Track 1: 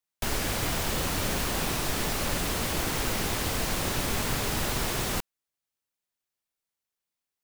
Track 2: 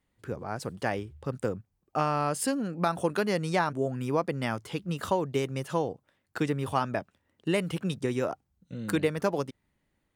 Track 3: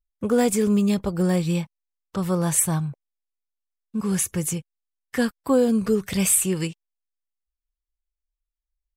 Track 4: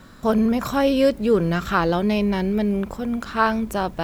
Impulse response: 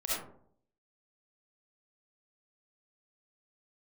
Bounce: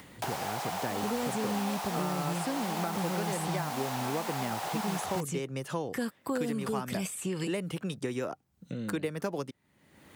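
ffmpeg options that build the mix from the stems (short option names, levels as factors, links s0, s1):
-filter_complex "[0:a]highpass=f=780:t=q:w=4.9,volume=0.841[s0];[1:a]acompressor=mode=upward:threshold=0.0398:ratio=2.5,volume=0.944[s1];[2:a]alimiter=limit=0.15:level=0:latency=1:release=35,adelay=800,volume=0.75[s2];[3:a]adelay=650,volume=0.1[s3];[s0][s1][s2][s3]amix=inputs=4:normalize=0,acrossover=split=460|1100|7300[s4][s5][s6][s7];[s4]acompressor=threshold=0.0251:ratio=4[s8];[s5]acompressor=threshold=0.0112:ratio=4[s9];[s6]acompressor=threshold=0.00891:ratio=4[s10];[s7]acompressor=threshold=0.00447:ratio=4[s11];[s8][s9][s10][s11]amix=inputs=4:normalize=0,highpass=110"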